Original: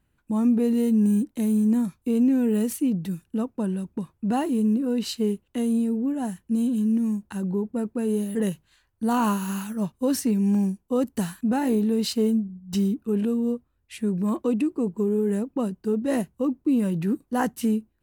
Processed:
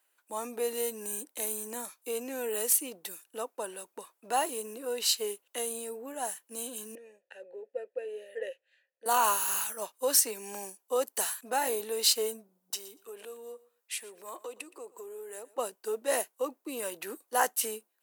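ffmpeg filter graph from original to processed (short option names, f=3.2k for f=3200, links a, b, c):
-filter_complex "[0:a]asettb=1/sr,asplit=3[a][b][c];[a]atrim=end=6.954[d];[b]atrim=start=6.95:end=9.06,asetpts=PTS-STARTPTS,afade=t=in:d=0.004:c=qsin,afade=t=out:st=2.106:d=0.004:c=qsin,highshelf=f=4.4k:g=-8.5,acontrast=53,asplit=3[e][f][g];[e]bandpass=f=530:t=q:w=8,volume=0dB[h];[f]bandpass=f=1.84k:t=q:w=8,volume=-6dB[i];[g]bandpass=f=2.48k:t=q:w=8,volume=-9dB[j];[h][i][j]amix=inputs=3:normalize=0[k];[c]atrim=start=9.056[l];[d][k]acrossfade=d=0.004:c1=hsin:c2=qsin[m];[m][l]acrossfade=d=0.004:c1=qsin:c2=hsin,asettb=1/sr,asplit=3[n][o][p];[n]atrim=end=12.704[q];[o]atrim=start=12.7:end=15.58,asetpts=PTS-STARTPTS,afade=t=in:d=0.004:c=qsin,afade=t=out:st=2.876:d=0.004:c=qsin,highpass=260,acompressor=threshold=-35dB:ratio=3:attack=3.2:release=140:knee=1:detection=peak,aecho=1:1:119|238:0.1|0.017,atrim=end_sample=127008[r];[p]atrim=start=15.576[s];[q][r]acrossfade=d=0.004:c1=hsin:c2=qsin[t];[t][s]acrossfade=d=0.004:c1=qsin:c2=hsin,highpass=f=500:w=0.5412,highpass=f=500:w=1.3066,highshelf=f=5.1k:g=12"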